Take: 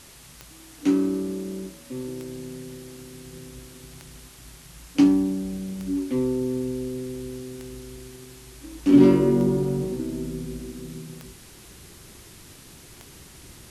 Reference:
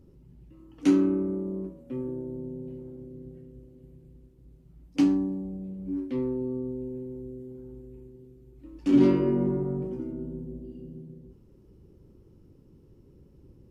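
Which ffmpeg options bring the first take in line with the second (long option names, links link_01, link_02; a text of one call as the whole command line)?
ffmpeg -i in.wav -af "adeclick=threshold=4,afwtdn=0.0045,asetnsamples=nb_out_samples=441:pad=0,asendcmd='3.33 volume volume -5dB',volume=0dB" out.wav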